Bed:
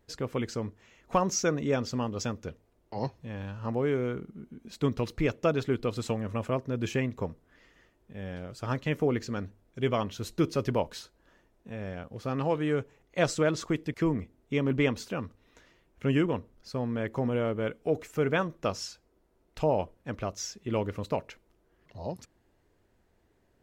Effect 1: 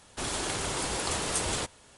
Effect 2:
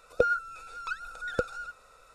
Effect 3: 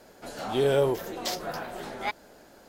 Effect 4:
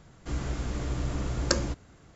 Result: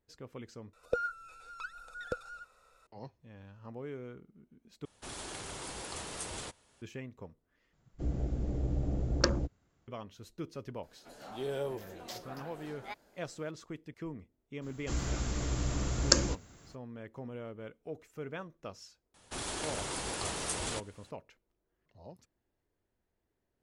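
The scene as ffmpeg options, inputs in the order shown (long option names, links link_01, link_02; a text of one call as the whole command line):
ffmpeg -i bed.wav -i cue0.wav -i cue1.wav -i cue2.wav -i cue3.wav -filter_complex "[1:a]asplit=2[link_01][link_02];[4:a]asplit=2[link_03][link_04];[0:a]volume=-14.5dB[link_05];[link_03]afwtdn=0.0178[link_06];[link_04]aemphasis=mode=production:type=50fm[link_07];[link_05]asplit=4[link_08][link_09][link_10][link_11];[link_08]atrim=end=0.734[link_12];[2:a]atrim=end=2.14,asetpts=PTS-STARTPTS,volume=-8dB[link_13];[link_09]atrim=start=2.866:end=4.854[link_14];[link_01]atrim=end=1.97,asetpts=PTS-STARTPTS,volume=-11dB[link_15];[link_10]atrim=start=6.816:end=7.734[link_16];[link_06]atrim=end=2.15,asetpts=PTS-STARTPTS,volume=-1.5dB[link_17];[link_11]atrim=start=9.876[link_18];[3:a]atrim=end=2.68,asetpts=PTS-STARTPTS,volume=-13dB,afade=type=in:duration=0.004:curve=hsin,afade=type=out:start_time=2.676:duration=0.004:curve=hsin,adelay=10830[link_19];[link_07]atrim=end=2.15,asetpts=PTS-STARTPTS,volume=-2dB,afade=type=in:duration=0.02,afade=type=out:start_time=2.13:duration=0.02,adelay=14610[link_20];[link_02]atrim=end=1.97,asetpts=PTS-STARTPTS,volume=-6dB,afade=type=in:duration=0.004:curve=hsin,afade=type=out:start_time=1.966:duration=0.004:curve=hsin,adelay=19140[link_21];[link_12][link_13]acrossfade=duration=0.004:curve1=hsin:curve2=hsin[link_22];[link_22][link_14]acrossfade=duration=0.004:curve1=hsin:curve2=hsin[link_23];[link_23][link_15]acrossfade=duration=0.004:curve1=hsin:curve2=hsin[link_24];[link_24][link_16]acrossfade=duration=0.004:curve1=hsin:curve2=hsin[link_25];[link_25][link_17]acrossfade=duration=0.004:curve1=hsin:curve2=hsin[link_26];[link_26][link_18]acrossfade=duration=0.004:curve1=hsin:curve2=hsin[link_27];[link_27][link_19][link_20][link_21]amix=inputs=4:normalize=0" out.wav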